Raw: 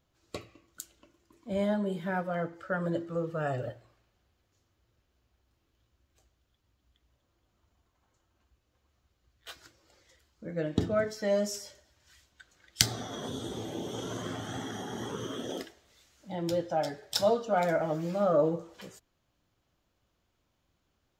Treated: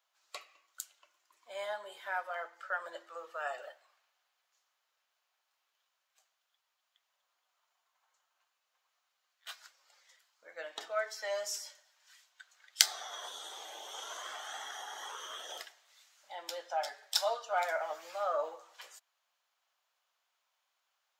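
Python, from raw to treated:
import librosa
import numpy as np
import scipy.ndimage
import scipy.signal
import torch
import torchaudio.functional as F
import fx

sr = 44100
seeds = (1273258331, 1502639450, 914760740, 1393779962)

y = scipy.signal.sosfilt(scipy.signal.butter(4, 760.0, 'highpass', fs=sr, output='sos'), x)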